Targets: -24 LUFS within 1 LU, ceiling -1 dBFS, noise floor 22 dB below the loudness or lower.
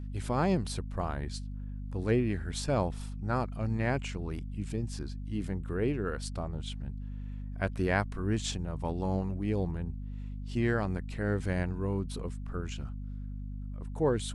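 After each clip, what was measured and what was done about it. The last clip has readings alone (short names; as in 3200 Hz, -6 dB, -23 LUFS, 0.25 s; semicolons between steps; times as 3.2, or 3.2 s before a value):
hum 50 Hz; harmonics up to 250 Hz; hum level -36 dBFS; loudness -34.0 LUFS; peak -14.5 dBFS; loudness target -24.0 LUFS
-> de-hum 50 Hz, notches 5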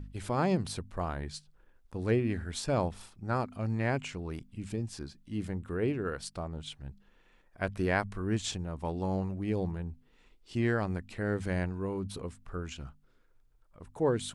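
hum none; loudness -34.0 LUFS; peak -14.5 dBFS; loudness target -24.0 LUFS
-> gain +10 dB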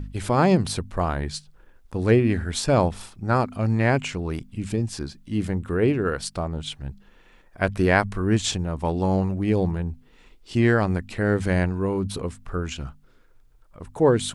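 loudness -24.0 LUFS; peak -4.5 dBFS; noise floor -55 dBFS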